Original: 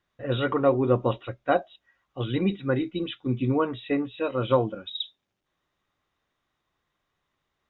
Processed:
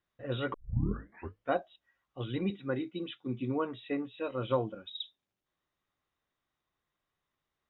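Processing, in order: 0.54 s: tape start 0.99 s; 2.50–4.27 s: high-pass 130 Hz; trim -8 dB

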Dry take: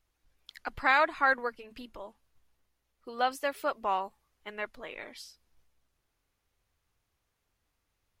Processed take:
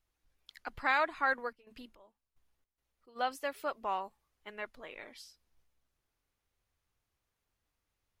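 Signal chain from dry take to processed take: 1.43–3.15 s: trance gate ".xx...xx.xx" 108 bpm -12 dB; trim -5 dB

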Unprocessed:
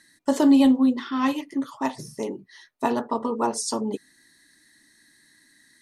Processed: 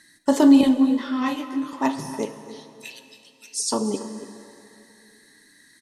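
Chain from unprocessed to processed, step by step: 2.25–3.60 s: elliptic high-pass 2.3 kHz, stop band 50 dB; delay 285 ms -17 dB; plate-style reverb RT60 2.7 s, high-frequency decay 0.8×, DRR 9.5 dB; 0.61–1.73 s: detune thickener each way 11 cents; trim +3 dB

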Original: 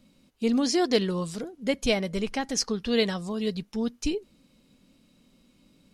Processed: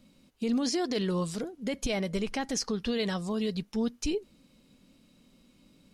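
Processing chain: peak limiter -21.5 dBFS, peak gain reduction 11.5 dB

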